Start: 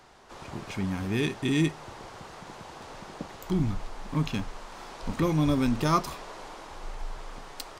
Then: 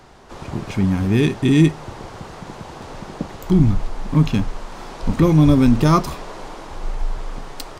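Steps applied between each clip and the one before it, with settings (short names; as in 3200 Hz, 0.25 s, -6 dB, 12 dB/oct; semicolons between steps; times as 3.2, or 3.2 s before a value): low shelf 420 Hz +8.5 dB; gain +5.5 dB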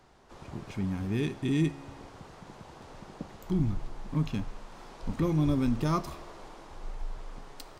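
resonator 69 Hz, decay 1.7 s, harmonics all, mix 50%; gain -8 dB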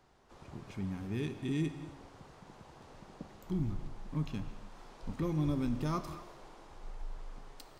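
non-linear reverb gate 0.3 s flat, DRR 11.5 dB; gain -6.5 dB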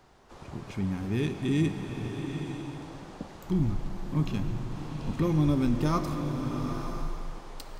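bloom reverb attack 0.93 s, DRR 5.5 dB; gain +7.5 dB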